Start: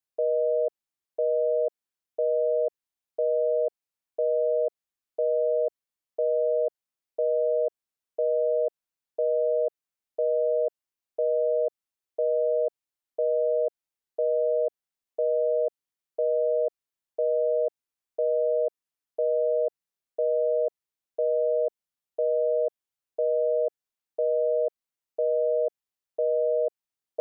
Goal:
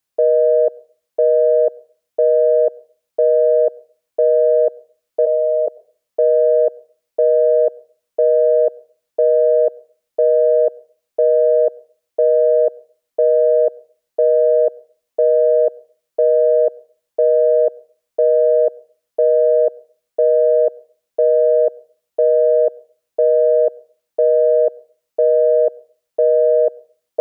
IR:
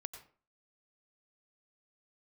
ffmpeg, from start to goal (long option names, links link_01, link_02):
-filter_complex "[0:a]asplit=3[link_01][link_02][link_03];[link_01]afade=type=out:start_time=5.25:duration=0.02[link_04];[link_02]highpass=frequency=560:width=0.5412,highpass=frequency=560:width=1.3066,afade=type=in:start_time=5.25:duration=0.02,afade=type=out:start_time=5.66:duration=0.02[link_05];[link_03]afade=type=in:start_time=5.66:duration=0.02[link_06];[link_04][link_05][link_06]amix=inputs=3:normalize=0,acontrast=55,asplit=2[link_07][link_08];[1:a]atrim=start_sample=2205[link_09];[link_08][link_09]afir=irnorm=-1:irlink=0,volume=-10.5dB[link_10];[link_07][link_10]amix=inputs=2:normalize=0,volume=4dB"